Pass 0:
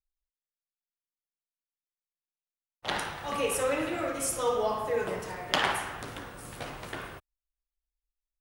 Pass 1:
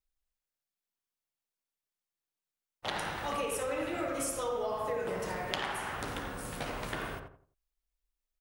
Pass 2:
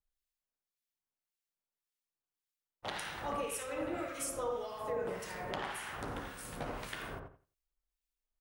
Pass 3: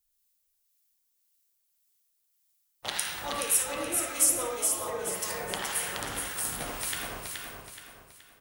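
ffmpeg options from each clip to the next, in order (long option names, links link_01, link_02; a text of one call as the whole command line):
ffmpeg -i in.wav -filter_complex "[0:a]acompressor=threshold=-34dB:ratio=10,asplit=2[link_01][link_02];[link_02]adelay=87,lowpass=frequency=1300:poles=1,volume=-3.5dB,asplit=2[link_03][link_04];[link_04]adelay=87,lowpass=frequency=1300:poles=1,volume=0.33,asplit=2[link_05][link_06];[link_06]adelay=87,lowpass=frequency=1300:poles=1,volume=0.33,asplit=2[link_07][link_08];[link_08]adelay=87,lowpass=frequency=1300:poles=1,volume=0.33[link_09];[link_01][link_03][link_05][link_07][link_09]amix=inputs=5:normalize=0,volume=2dB" out.wav
ffmpeg -i in.wav -filter_complex "[0:a]acrossover=split=1500[link_01][link_02];[link_01]aeval=exprs='val(0)*(1-0.7/2+0.7/2*cos(2*PI*1.8*n/s))':channel_layout=same[link_03];[link_02]aeval=exprs='val(0)*(1-0.7/2-0.7/2*cos(2*PI*1.8*n/s))':channel_layout=same[link_04];[link_03][link_04]amix=inputs=2:normalize=0,volume=-1dB" out.wav
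ffmpeg -i in.wav -af "crystalizer=i=5.5:c=0,aecho=1:1:424|848|1272|1696|2120:0.596|0.238|0.0953|0.0381|0.0152" out.wav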